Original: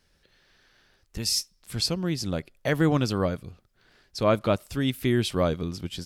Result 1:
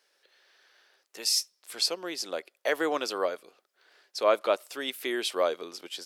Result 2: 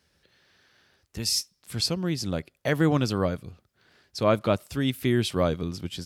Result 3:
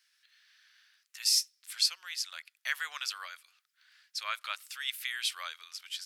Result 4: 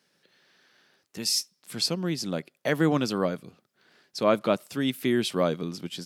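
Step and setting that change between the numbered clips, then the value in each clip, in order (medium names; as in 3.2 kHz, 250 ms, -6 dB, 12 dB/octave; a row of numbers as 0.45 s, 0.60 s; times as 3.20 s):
high-pass, cutoff frequency: 410 Hz, 57 Hz, 1.5 kHz, 160 Hz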